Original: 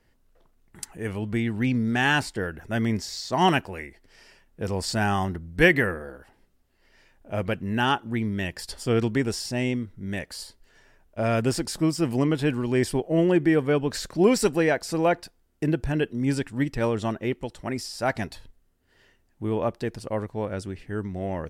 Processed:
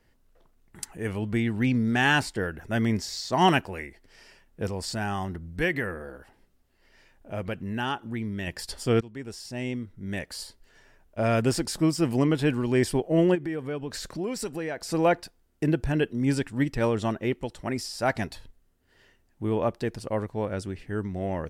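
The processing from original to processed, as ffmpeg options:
-filter_complex "[0:a]asettb=1/sr,asplit=3[a][b][c];[a]atrim=end=4.674[d];[b]atrim=start=4.67:end=8.47,asetpts=PTS-STARTPTS,afade=t=in:d=0.004:c=qsin,afade=t=out:st=3.796:d=0.004:c=qsin,acompressor=threshold=-36dB:ratio=1.5:attack=3.2:release=140:knee=1:detection=peak[e];[c]atrim=start=8.466[f];[d][e]acrossfade=d=0.004:c1=hsin:c2=qsin[g];[g][f]acrossfade=d=0.004:c1=qsin:c2=hsin,asplit=3[h][i][j];[h]afade=t=out:st=13.34:d=0.02[k];[i]acompressor=threshold=-33dB:ratio=2.5:attack=3.2:release=140:knee=1:detection=peak,afade=t=in:st=13.34:d=0.02,afade=t=out:st=14.9:d=0.02[l];[j]afade=t=in:st=14.9:d=0.02[m];[k][l][m]amix=inputs=3:normalize=0,asplit=2[n][o];[n]atrim=end=9.01,asetpts=PTS-STARTPTS,afade=t=out:st=9.006:d=0.004:c=hsin:silence=0.0794328[p];[o]atrim=start=9.01,asetpts=PTS-STARTPTS,afade=t=in:d=1.36:silence=0.0794328[q];[p][q]concat=n=2:v=0:a=1"

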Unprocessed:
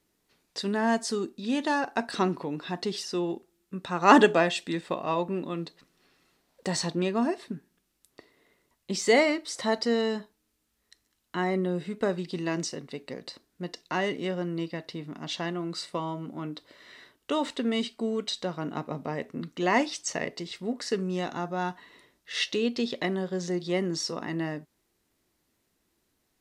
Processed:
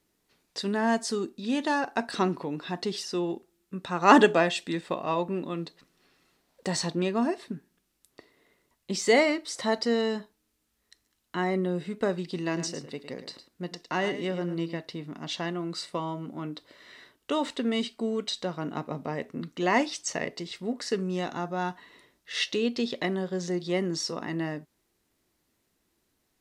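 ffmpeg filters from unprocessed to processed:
-filter_complex "[0:a]asettb=1/sr,asplit=3[a][b][c];[a]atrim=end=12.464[d];[b]atrim=start=12.46:end=14.79,asetpts=PTS-STARTPTS,afade=t=in:d=0.004:c=qsin,afade=t=out:st=2.326:d=0.004:c=qsin,aecho=1:1:108:0.266,atrim=end_sample=102753[e];[c]atrim=start=14.786[f];[d][e]acrossfade=d=0.004:c1=hsin:c2=qsin[g];[g][f]acrossfade=d=0.004:c1=qsin:c2=hsin"

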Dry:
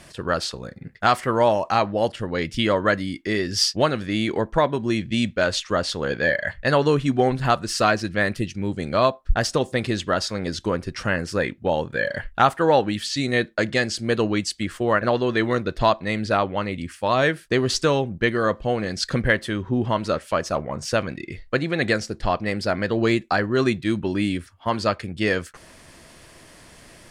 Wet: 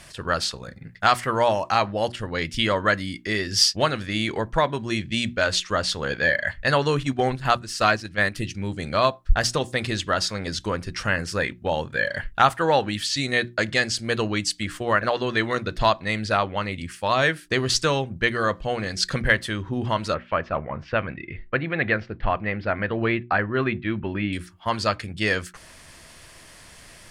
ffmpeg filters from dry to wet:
-filter_complex "[0:a]asettb=1/sr,asplit=3[a][b][c];[a]atrim=end=7.034[d];[b]atrim=start=7.03:end=8.35,asetpts=PTS-STARTPTS,afade=t=in:d=0.004:c=qsin,afade=t=out:st=1.316:d=0.004:c=qsin,agate=range=-7dB:threshold=-24dB:ratio=16:release=100:detection=peak[e];[c]atrim=start=8.346[f];[d][e]acrossfade=d=0.004:c1=hsin:c2=qsin[g];[g][f]acrossfade=d=0.004:c1=qsin:c2=hsin,asettb=1/sr,asplit=3[h][i][j];[h]atrim=end=20.144[k];[i]atrim=start=20.14:end=24.33,asetpts=PTS-STARTPTS,afade=t=in:d=0.004:c=qsin,afade=t=out:st=4.186:d=0.004:c=qsin,lowpass=f=2.7k:w=0.5412,lowpass=f=2.7k:w=1.3066[l];[j]atrim=start=24.326[m];[k][l]acrossfade=d=0.004:c1=hsin:c2=qsin[n];[n][m]acrossfade=d=0.004:c1=qsin:c2=hsin,equalizer=f=340:t=o:w=2.6:g=-7,bandreject=f=60:t=h:w=6,bandreject=f=120:t=h:w=6,bandreject=f=180:t=h:w=6,bandreject=f=240:t=h:w=6,bandreject=f=300:t=h:w=6,bandreject=f=360:t=h:w=6,volume=2.5dB"

